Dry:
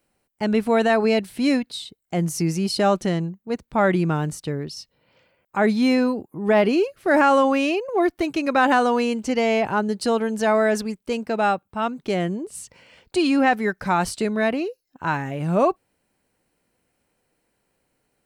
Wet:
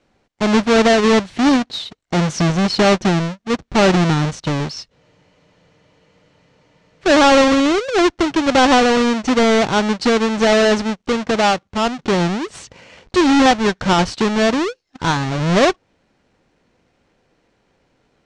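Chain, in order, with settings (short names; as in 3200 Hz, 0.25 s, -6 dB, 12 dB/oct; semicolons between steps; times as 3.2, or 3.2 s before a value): half-waves squared off; LPF 6400 Hz 24 dB/oct; notch 4900 Hz, Q 26; in parallel at -2 dB: compressor, threshold -26 dBFS, peak gain reduction 14.5 dB; on the sum: spectral freeze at 5.01, 2.01 s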